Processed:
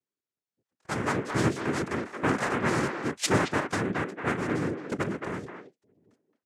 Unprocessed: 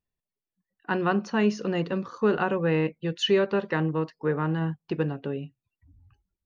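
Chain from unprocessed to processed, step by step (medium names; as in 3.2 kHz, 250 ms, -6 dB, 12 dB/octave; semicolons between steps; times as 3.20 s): noise-vocoded speech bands 3; speakerphone echo 220 ms, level -6 dB; trim -3 dB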